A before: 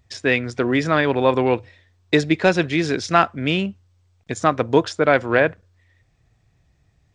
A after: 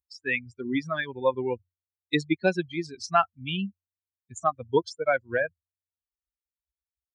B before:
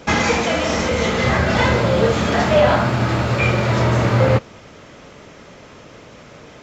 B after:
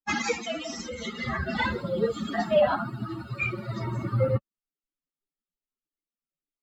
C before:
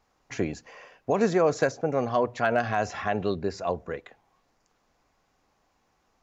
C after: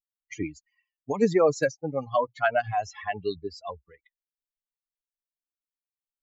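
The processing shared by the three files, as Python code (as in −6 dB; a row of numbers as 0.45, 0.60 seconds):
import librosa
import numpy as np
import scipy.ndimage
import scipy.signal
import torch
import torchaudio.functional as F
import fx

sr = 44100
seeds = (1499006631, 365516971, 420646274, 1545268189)

y = fx.bin_expand(x, sr, power=3.0)
y = fx.low_shelf(y, sr, hz=75.0, db=-10.0)
y = y * 10.0 ** (-30 / 20.0) / np.sqrt(np.mean(np.square(y)))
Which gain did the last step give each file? −2.5, −3.0, +5.5 decibels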